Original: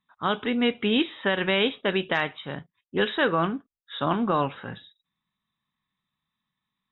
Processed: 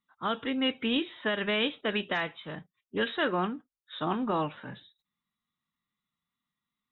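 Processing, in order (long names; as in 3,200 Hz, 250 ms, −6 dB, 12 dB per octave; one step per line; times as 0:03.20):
phase-vocoder pitch shift with formants kept +1.5 semitones
level −5 dB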